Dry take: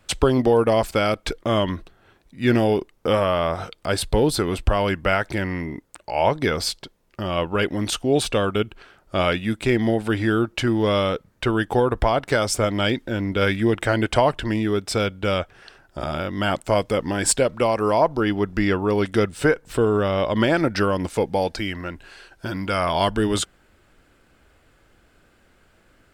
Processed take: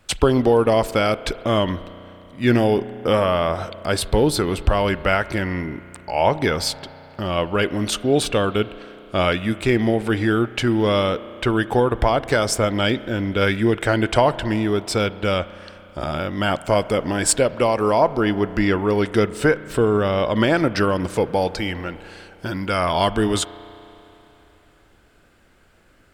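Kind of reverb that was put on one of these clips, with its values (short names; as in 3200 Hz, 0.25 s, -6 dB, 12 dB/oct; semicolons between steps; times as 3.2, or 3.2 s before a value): spring tank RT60 3.3 s, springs 33 ms, chirp 40 ms, DRR 15.5 dB; gain +1.5 dB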